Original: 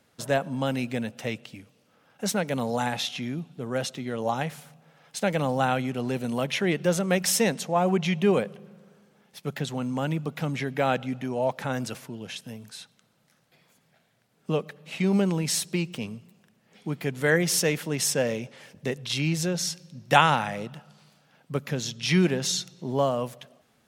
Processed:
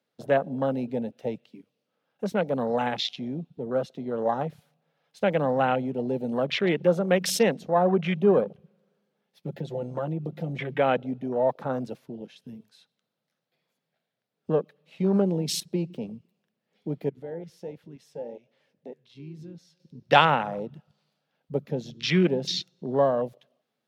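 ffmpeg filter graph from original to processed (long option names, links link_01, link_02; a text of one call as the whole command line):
ffmpeg -i in.wav -filter_complex "[0:a]asettb=1/sr,asplit=3[link_01][link_02][link_03];[link_01]atrim=end=9.454[link_04];[link_02]atrim=start=9.45:end=10.79,asetpts=PTS-STARTPTS,afade=type=in:duration=0.004:curve=qsin,afade=type=out:start_time=1.336:duration=0.004:curve=qsin,aecho=1:1:5.8:0.88,atrim=end_sample=59094,acompressor=threshold=-27dB:ratio=3:attack=3.2:release=140:knee=1:detection=peak[link_05];[link_03]atrim=start=10.786[link_06];[link_04][link_05]acrossfade=duration=0.004:curve1=hsin:curve2=qsin[link_07];[link_07][link_06]acrossfade=duration=0.004:curve1=qsin:curve2=hsin,asettb=1/sr,asplit=3[link_08][link_09][link_10];[link_08]atrim=end=17.094[link_11];[link_09]atrim=start=17.09:end=19.8,asetpts=PTS-STARTPTS,afade=type=in:duration=0.004:curve=qsin,afade=type=out:start_time=2.706:duration=0.004:curve=qsin,highshelf=frequency=5600:gain=-7,acompressor=threshold=-46dB:ratio=1.5:attack=3.2:release=140:knee=1:detection=peak,flanger=delay=6.4:depth=7.5:regen=83:speed=1.3:shape=triangular[link_12];[link_10]atrim=start=19.796[link_13];[link_11][link_12]acrossfade=duration=0.004:curve1=hsin:curve2=qsin[link_14];[link_14][link_13]acrossfade=duration=0.004:curve1=qsin:curve2=hsin,highpass=frequency=130:width=0.5412,highpass=frequency=130:width=1.3066,afwtdn=0.0251,equalizer=frequency=500:width_type=o:width=1:gain=5,equalizer=frequency=4000:width_type=o:width=1:gain=5,equalizer=frequency=8000:width_type=o:width=1:gain=-6,volume=-1dB" out.wav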